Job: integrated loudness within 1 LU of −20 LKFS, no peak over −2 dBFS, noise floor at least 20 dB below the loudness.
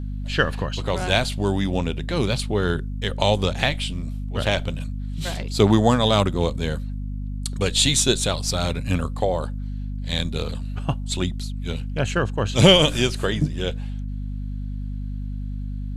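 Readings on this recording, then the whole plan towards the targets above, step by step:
mains hum 50 Hz; hum harmonics up to 250 Hz; level of the hum −26 dBFS; integrated loudness −23.0 LKFS; sample peak −1.5 dBFS; target loudness −20.0 LKFS
→ mains-hum notches 50/100/150/200/250 Hz
level +3 dB
brickwall limiter −2 dBFS

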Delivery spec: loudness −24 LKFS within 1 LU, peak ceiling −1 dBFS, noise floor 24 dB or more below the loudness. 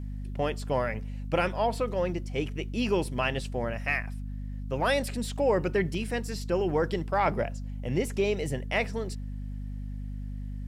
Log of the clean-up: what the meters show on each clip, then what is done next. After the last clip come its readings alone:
mains hum 50 Hz; hum harmonics up to 250 Hz; level of the hum −33 dBFS; integrated loudness −30.0 LKFS; sample peak −14.0 dBFS; target loudness −24.0 LKFS
→ hum removal 50 Hz, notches 5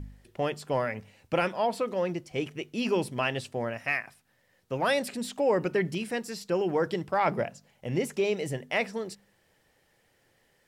mains hum none found; integrated loudness −30.0 LKFS; sample peak −14.5 dBFS; target loudness −24.0 LKFS
→ level +6 dB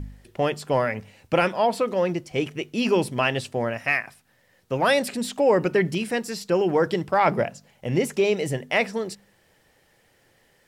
integrated loudness −24.0 LKFS; sample peak −8.5 dBFS; background noise floor −63 dBFS

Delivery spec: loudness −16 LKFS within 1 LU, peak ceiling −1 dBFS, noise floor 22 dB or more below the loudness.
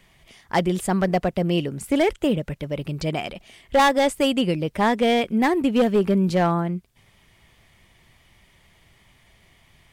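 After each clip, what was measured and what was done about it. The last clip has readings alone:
share of clipped samples 0.8%; peaks flattened at −12.5 dBFS; integrated loudness −22.0 LKFS; sample peak −12.5 dBFS; target loudness −16.0 LKFS
→ clipped peaks rebuilt −12.5 dBFS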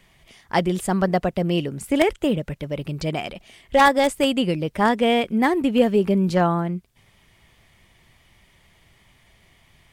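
share of clipped samples 0.0%; integrated loudness −21.0 LKFS; sample peak −3.5 dBFS; target loudness −16.0 LKFS
→ level +5 dB
brickwall limiter −1 dBFS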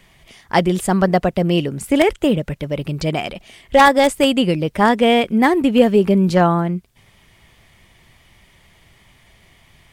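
integrated loudness −16.5 LKFS; sample peak −1.0 dBFS; background noise floor −53 dBFS

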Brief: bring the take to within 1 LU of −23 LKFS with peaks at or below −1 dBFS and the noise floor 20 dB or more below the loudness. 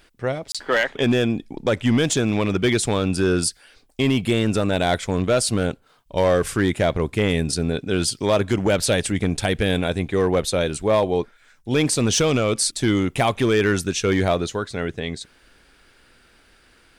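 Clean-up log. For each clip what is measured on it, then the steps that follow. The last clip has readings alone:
share of clipped samples 1.0%; peaks flattened at −11.5 dBFS; number of dropouts 1; longest dropout 26 ms; integrated loudness −21.5 LKFS; sample peak −11.5 dBFS; target loudness −23.0 LKFS
→ clipped peaks rebuilt −11.5 dBFS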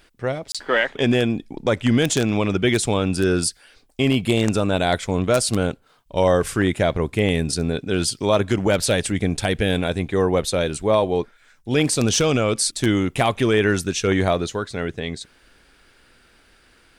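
share of clipped samples 0.0%; number of dropouts 1; longest dropout 26 ms
→ repair the gap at 0:00.52, 26 ms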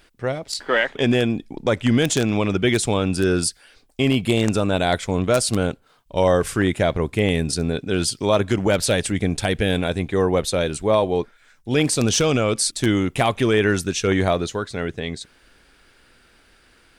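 number of dropouts 0; integrated loudness −21.0 LKFS; sample peak −2.5 dBFS; target loudness −23.0 LKFS
→ level −2 dB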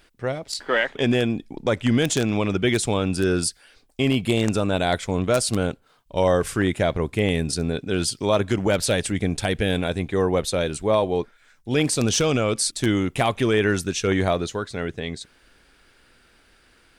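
integrated loudness −23.0 LKFS; sample peak −4.5 dBFS; background noise floor −58 dBFS

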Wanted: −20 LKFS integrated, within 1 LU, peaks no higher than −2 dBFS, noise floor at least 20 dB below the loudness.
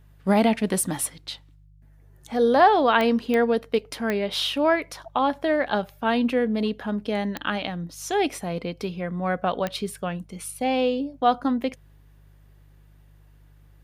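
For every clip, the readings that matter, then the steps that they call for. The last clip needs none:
number of clicks 5; mains hum 50 Hz; hum harmonics up to 150 Hz; level of the hum −50 dBFS; integrated loudness −24.0 LKFS; sample peak −4.5 dBFS; target loudness −20.0 LKFS
→ click removal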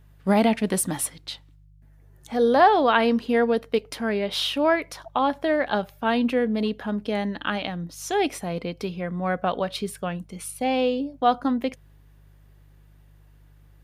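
number of clicks 0; mains hum 50 Hz; hum harmonics up to 150 Hz; level of the hum −50 dBFS
→ hum removal 50 Hz, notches 3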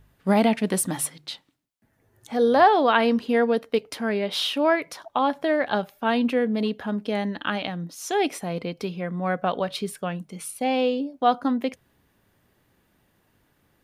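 mains hum none found; integrated loudness −24.0 LKFS; sample peak −4.5 dBFS; target loudness −20.0 LKFS
→ level +4 dB
brickwall limiter −2 dBFS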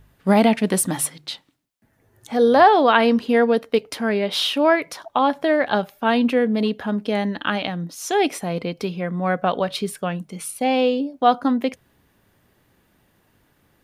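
integrated loudness −20.0 LKFS; sample peak −2.0 dBFS; background noise floor −63 dBFS

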